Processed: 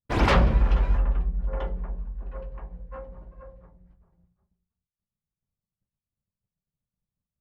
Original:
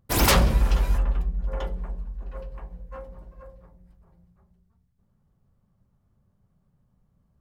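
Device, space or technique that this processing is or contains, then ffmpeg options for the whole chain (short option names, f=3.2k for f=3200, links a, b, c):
hearing-loss simulation: -af "lowpass=2.5k,agate=range=-33dB:threshold=-50dB:ratio=3:detection=peak"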